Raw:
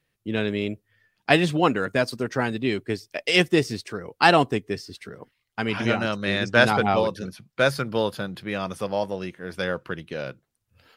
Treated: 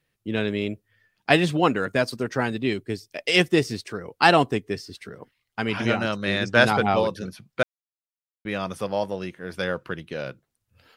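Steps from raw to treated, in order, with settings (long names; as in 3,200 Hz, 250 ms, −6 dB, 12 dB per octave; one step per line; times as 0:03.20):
0:02.73–0:03.18: parametric band 1,200 Hz −6 dB 2.7 octaves
0:07.63–0:08.45: silence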